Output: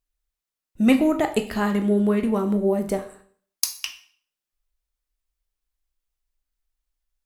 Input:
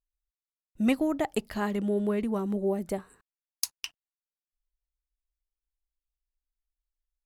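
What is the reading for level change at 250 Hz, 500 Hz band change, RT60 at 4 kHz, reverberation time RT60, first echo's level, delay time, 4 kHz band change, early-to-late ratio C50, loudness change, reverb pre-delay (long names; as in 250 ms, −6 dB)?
+8.0 dB, +6.5 dB, 0.50 s, 0.50 s, no echo audible, no echo audible, +7.5 dB, 11.5 dB, +7.5 dB, 7 ms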